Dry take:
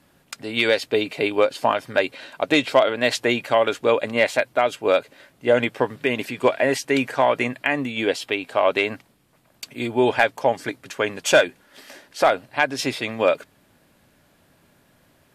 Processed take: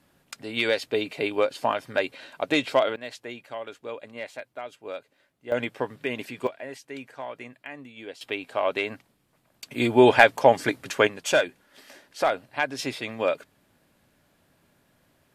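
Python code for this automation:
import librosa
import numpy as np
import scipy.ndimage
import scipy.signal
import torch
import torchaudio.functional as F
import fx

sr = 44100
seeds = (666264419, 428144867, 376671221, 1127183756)

y = fx.gain(x, sr, db=fx.steps((0.0, -5.0), (2.96, -17.5), (5.52, -7.5), (6.47, -18.0), (8.21, -6.5), (9.71, 3.0), (11.07, -6.0)))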